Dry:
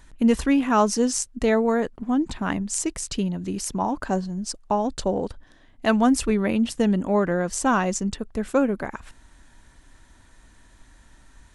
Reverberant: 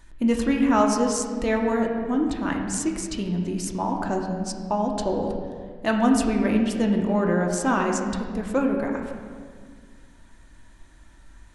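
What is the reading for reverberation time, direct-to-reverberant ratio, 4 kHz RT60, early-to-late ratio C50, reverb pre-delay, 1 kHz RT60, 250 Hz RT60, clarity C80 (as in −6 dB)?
1.8 s, 1.0 dB, 1.2 s, 4.5 dB, 3 ms, 1.7 s, 2.5 s, 5.5 dB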